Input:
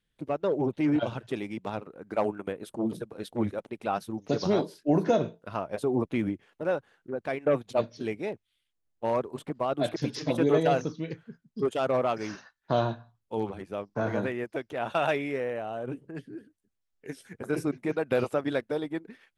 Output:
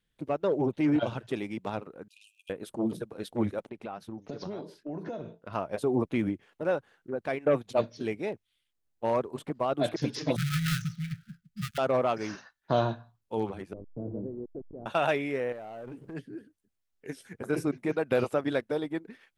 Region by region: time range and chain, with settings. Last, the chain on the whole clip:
2.08–2.50 s: brick-wall FIR high-pass 2.4 kHz + compressor with a negative ratio -53 dBFS, ratio -0.5 + loudspeaker Doppler distortion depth 0.3 ms
3.69–5.53 s: low-pass 2.9 kHz 6 dB/octave + compression 5:1, threshold -35 dBFS
10.36–11.78 s: dead-time distortion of 0.18 ms + brick-wall FIR band-stop 210–1200 Hz + bass shelf 200 Hz +7.5 dB
13.73–14.86 s: send-on-delta sampling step -32 dBFS + four-pole ladder low-pass 500 Hz, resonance 25%
15.52–16.14 s: compression 8:1, threshold -44 dBFS + waveshaping leveller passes 2
whole clip: none

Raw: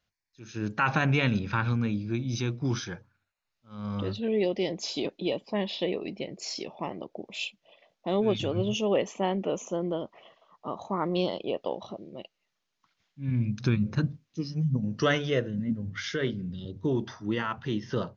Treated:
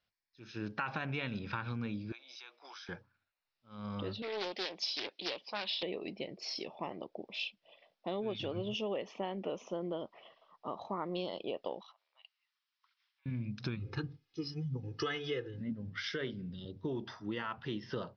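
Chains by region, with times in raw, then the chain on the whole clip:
2.12–2.89 s: high-pass 670 Hz 24 dB/octave + compression 3:1, threshold -45 dBFS
4.22–5.83 s: low-pass 5.2 kHz + tilt EQ +4.5 dB/octave + loudspeaker Doppler distortion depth 0.41 ms
11.81–13.26 s: compression 5:1, threshold -44 dBFS + steep high-pass 950 Hz
13.79–15.61 s: peaking EQ 590 Hz -11 dB 0.24 oct + comb 2.4 ms, depth 92%
whole clip: Chebyshev low-pass 5.4 kHz, order 5; bass shelf 290 Hz -7 dB; compression 6:1, threshold -31 dBFS; trim -2.5 dB

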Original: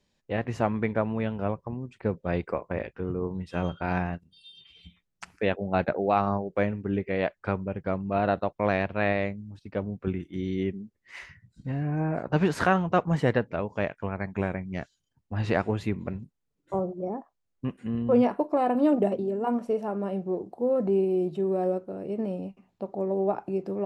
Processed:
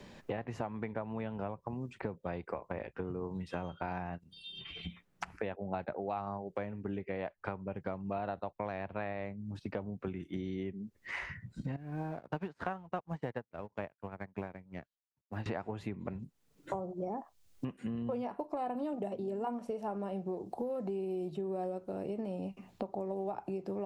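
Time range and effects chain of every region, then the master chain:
11.76–15.46 s: companding laws mixed up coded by A + treble shelf 6.5 kHz -11 dB + upward expansion 2.5:1, over -38 dBFS
whole clip: compression 4:1, threshold -41 dBFS; dynamic bell 840 Hz, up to +6 dB, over -56 dBFS, Q 1.9; three bands compressed up and down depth 70%; trim +2 dB

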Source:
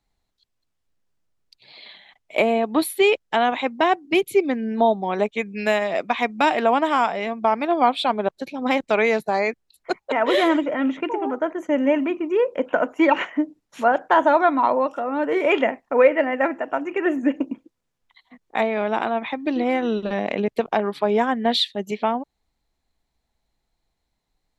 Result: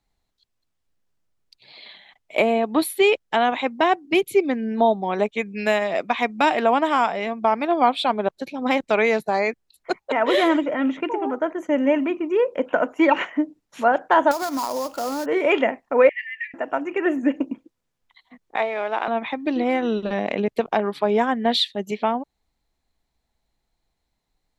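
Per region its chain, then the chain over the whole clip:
14.31–15.26 s: sample-rate reducer 5.9 kHz, jitter 20% + compression 10:1, threshold -21 dBFS
16.09–16.54 s: brick-wall FIR high-pass 1.7 kHz + distance through air 180 m
18.56–19.08 s: companding laws mixed up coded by A + band-pass 470–4400 Hz
whole clip: none

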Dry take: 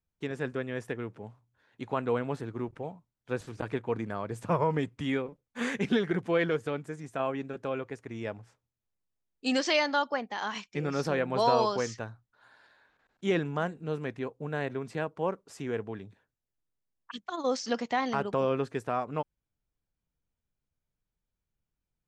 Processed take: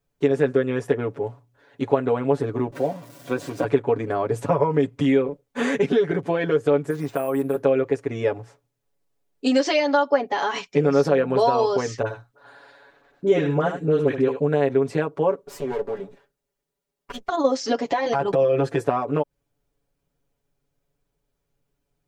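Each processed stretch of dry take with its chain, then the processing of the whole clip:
2.72–3.64 s: jump at every zero crossing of -45.5 dBFS + high-pass 170 Hz + comb of notches 430 Hz
6.90–7.63 s: peaking EQ 1.1 kHz +6 dB 0.85 oct + compression 3:1, threshold -36 dBFS + careless resampling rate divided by 4×, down none, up hold
12.02–14.41 s: phase dispersion highs, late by 45 ms, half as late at 1 kHz + delay 76 ms -11 dB
15.45–17.29 s: comb filter that takes the minimum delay 5 ms + compression 2:1, threshold -43 dBFS
17.87–18.85 s: comb 5.9 ms, depth 86% + compression 4:1, threshold -31 dBFS
whole clip: compression 4:1, threshold -32 dBFS; peaking EQ 470 Hz +9.5 dB 1.6 oct; comb 7.1 ms, depth 86%; trim +6.5 dB

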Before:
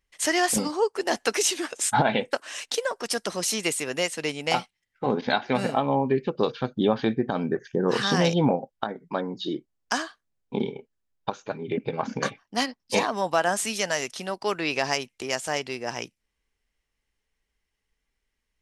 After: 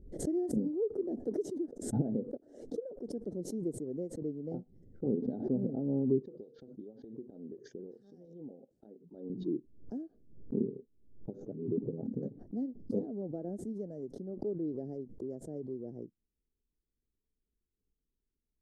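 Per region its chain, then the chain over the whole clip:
6.22–9.30 s: frequency weighting ITU-R 468 + compression 12:1, threshold -32 dBFS
whole clip: inverse Chebyshev low-pass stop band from 990 Hz, stop band 50 dB; bass shelf 250 Hz -7.5 dB; swell ahead of each attack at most 85 dB/s

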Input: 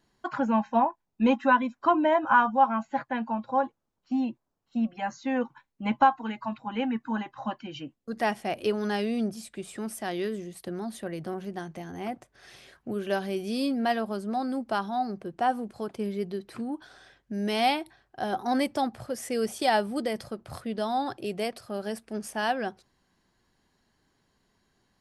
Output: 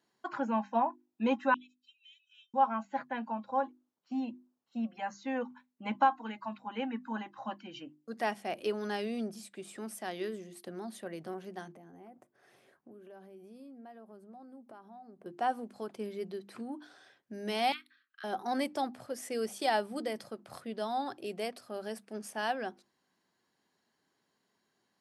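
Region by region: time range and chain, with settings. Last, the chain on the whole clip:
1.54–2.54 s: rippled Chebyshev high-pass 2.5 kHz, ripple 6 dB + treble shelf 5 kHz -10 dB + loudspeaker Doppler distortion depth 0.57 ms
11.72–15.26 s: peaking EQ 4.4 kHz -15 dB 2.6 oct + compression 8:1, threshold -42 dBFS
17.72–18.24 s: Chebyshev high-pass 1.2 kHz, order 6 + high-order bell 7.6 kHz -12 dB 1.3 oct + hard clipper -23.5 dBFS
whole clip: high-pass 200 Hz 12 dB/octave; hum notches 50/100/150/200/250/300/350 Hz; trim -5.5 dB

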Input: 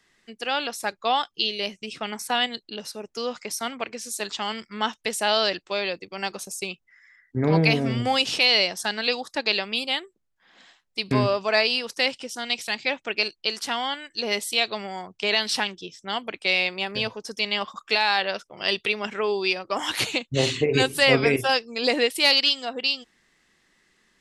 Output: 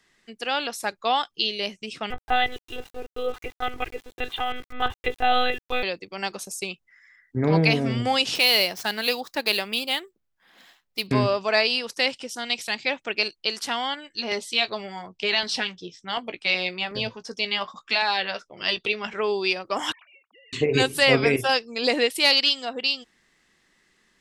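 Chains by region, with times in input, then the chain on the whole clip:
2.10–5.83 s: monotone LPC vocoder at 8 kHz 250 Hz + comb 2.5 ms, depth 71% + small samples zeroed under -43.5 dBFS
8.35–11.07 s: median filter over 5 samples + treble shelf 9.9 kHz +9 dB
13.95–19.19 s: low-pass 6 kHz + LFO notch saw down 2.7 Hz 240–3600 Hz + doubling 17 ms -11.5 dB
19.92–20.53 s: formants replaced by sine waves + ladder band-pass 1.5 kHz, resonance 50% + compression 8:1, threshold -51 dBFS
whole clip: none

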